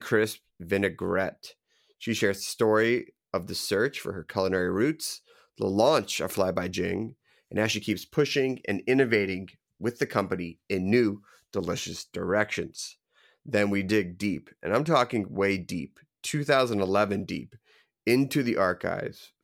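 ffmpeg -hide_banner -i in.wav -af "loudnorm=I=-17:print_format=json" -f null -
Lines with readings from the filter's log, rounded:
"input_i" : "-27.5",
"input_tp" : "-8.1",
"input_lra" : "1.3",
"input_thresh" : "-38.0",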